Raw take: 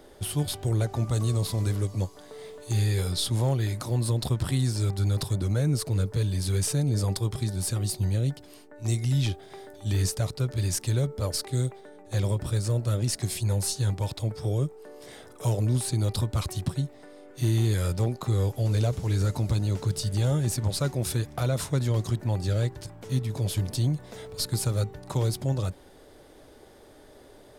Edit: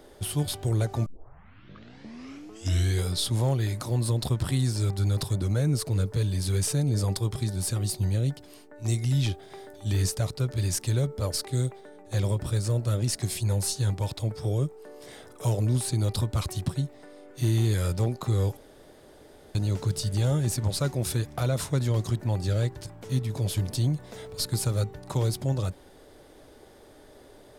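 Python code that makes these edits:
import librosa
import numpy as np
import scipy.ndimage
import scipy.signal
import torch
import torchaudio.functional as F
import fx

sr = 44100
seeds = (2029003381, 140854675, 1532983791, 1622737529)

y = fx.edit(x, sr, fx.tape_start(start_s=1.06, length_s=2.02),
    fx.room_tone_fill(start_s=18.57, length_s=0.98), tone=tone)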